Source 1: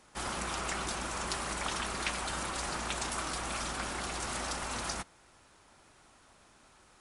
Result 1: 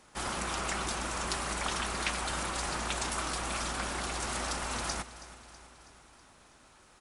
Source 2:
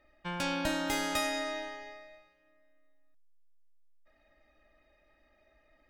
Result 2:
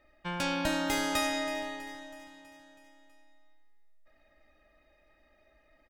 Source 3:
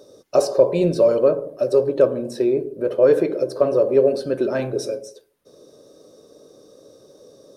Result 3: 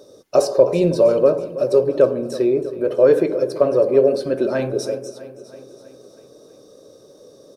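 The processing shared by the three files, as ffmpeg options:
-af "aecho=1:1:324|648|972|1296|1620|1944:0.158|0.0935|0.0552|0.0326|0.0192|0.0113,volume=1.5dB"

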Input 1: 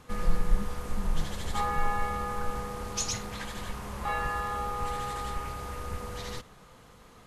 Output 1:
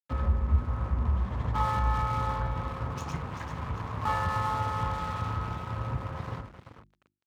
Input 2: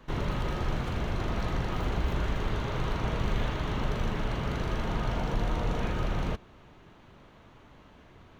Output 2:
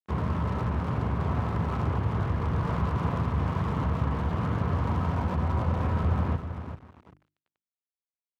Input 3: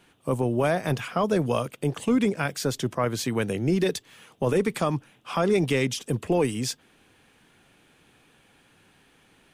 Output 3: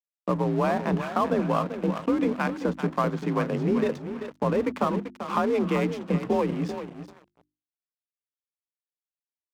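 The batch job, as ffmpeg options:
-af "equalizer=f=1k:t=o:w=0.67:g=9,equalizer=f=4k:t=o:w=0.67:g=-5,equalizer=f=10k:t=o:w=0.67:g=-4,adynamicsmooth=sensitivity=2:basefreq=2k,lowshelf=f=170:g=10,acompressor=threshold=-21dB:ratio=2,aecho=1:1:389|778|1167|1556:0.376|0.117|0.0361|0.0112,aeval=exprs='sgn(val(0))*max(abs(val(0))-0.00168,0)':c=same,afreqshift=44,aeval=exprs='sgn(val(0))*max(abs(val(0))-0.0106,0)':c=same,highpass=80,bandreject=f=50:t=h:w=6,bandreject=f=100:t=h:w=6,bandreject=f=150:t=h:w=6,bandreject=f=200:t=h:w=6,bandreject=f=250:t=h:w=6,bandreject=f=300:t=h:w=6,bandreject=f=350:t=h:w=6"

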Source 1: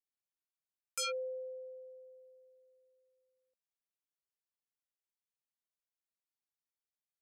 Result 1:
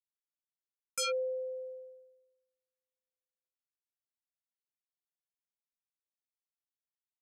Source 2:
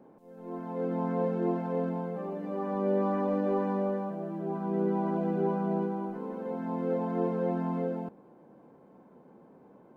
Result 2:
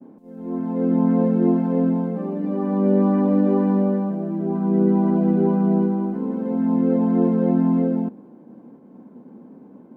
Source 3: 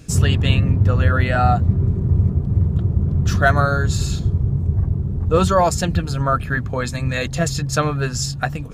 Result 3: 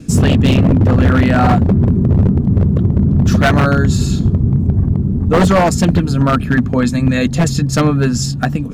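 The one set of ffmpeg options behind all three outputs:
-af "equalizer=f=240:w=1.4:g=15,aeval=exprs='0.447*(abs(mod(val(0)/0.447+3,4)-2)-1)':c=same,agate=range=-33dB:threshold=-45dB:ratio=3:detection=peak,volume=2.5dB"

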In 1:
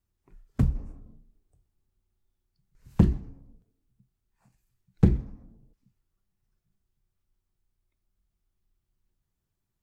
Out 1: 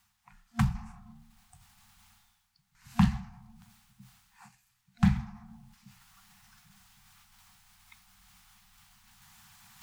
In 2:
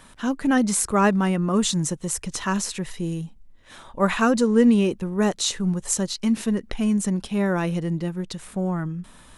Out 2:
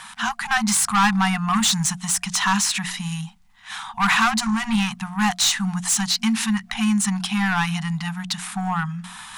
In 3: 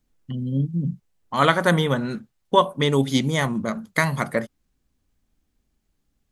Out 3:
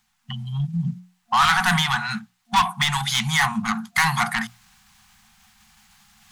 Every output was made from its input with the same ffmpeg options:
-filter_complex "[0:a]areverse,acompressor=mode=upward:threshold=-42dB:ratio=2.5,areverse,bandreject=f=60:t=h:w=6,bandreject=f=120:t=h:w=6,bandreject=f=180:t=h:w=6,bandreject=f=240:t=h:w=6,bandreject=f=300:t=h:w=6,bandreject=f=360:t=h:w=6,bandreject=f=420:t=h:w=6,bandreject=f=480:t=h:w=6,asplit=2[a][b];[b]highpass=f=720:p=1,volume=27dB,asoftclip=type=tanh:threshold=-1dB[c];[a][c]amix=inputs=2:normalize=0,lowpass=f=6.7k:p=1,volume=-6dB,afftfilt=real='re*(1-between(b*sr/4096,230,700))':imag='im*(1-between(b*sr/4096,230,700))':win_size=4096:overlap=0.75,volume=-7dB"

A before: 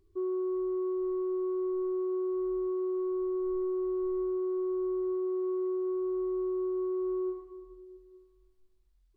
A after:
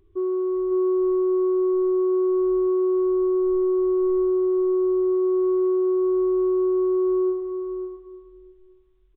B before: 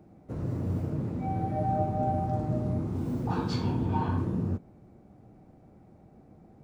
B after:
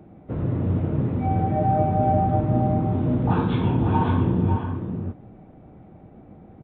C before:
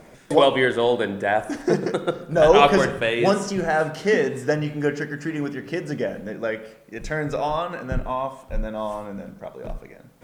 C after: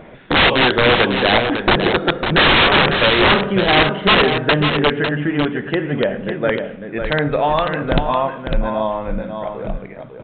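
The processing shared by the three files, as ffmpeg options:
-af "aresample=8000,aeval=exprs='(mod(5.31*val(0)+1,2)-1)/5.31':c=same,aresample=44100,aecho=1:1:551:0.447,volume=7.5dB"

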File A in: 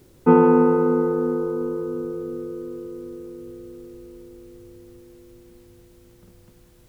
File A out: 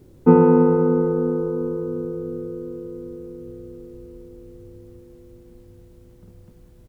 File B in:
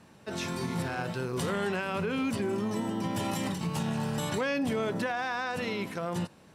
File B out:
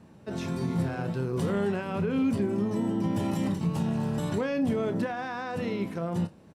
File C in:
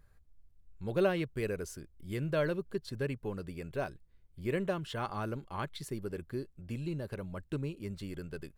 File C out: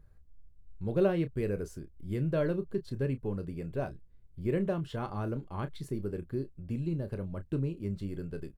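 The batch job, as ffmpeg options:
-filter_complex "[0:a]tiltshelf=f=740:g=6,asplit=2[a][b];[b]adelay=30,volume=-11dB[c];[a][c]amix=inputs=2:normalize=0,volume=-1dB"

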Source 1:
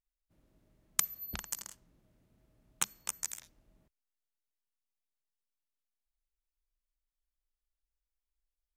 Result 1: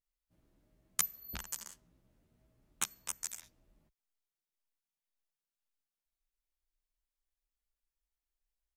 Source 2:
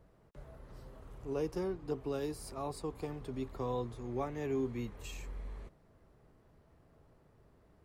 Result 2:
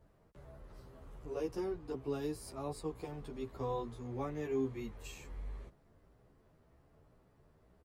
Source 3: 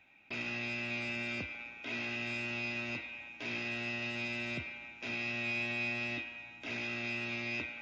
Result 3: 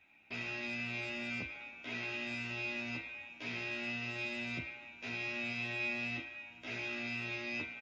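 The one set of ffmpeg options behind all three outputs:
-filter_complex "[0:a]asplit=2[a][b];[b]adelay=11.7,afreqshift=1.9[c];[a][c]amix=inputs=2:normalize=1,volume=1dB"

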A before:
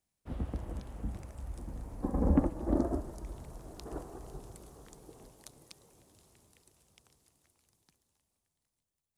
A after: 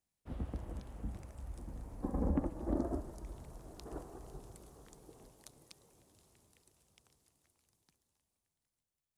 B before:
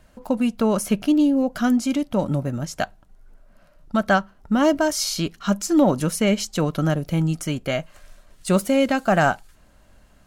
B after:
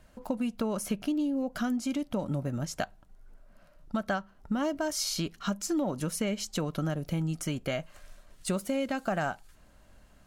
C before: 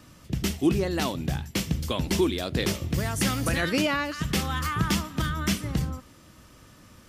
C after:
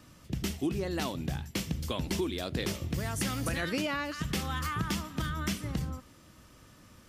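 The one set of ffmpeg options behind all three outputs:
-af "acompressor=threshold=-24dB:ratio=4,volume=-4dB"

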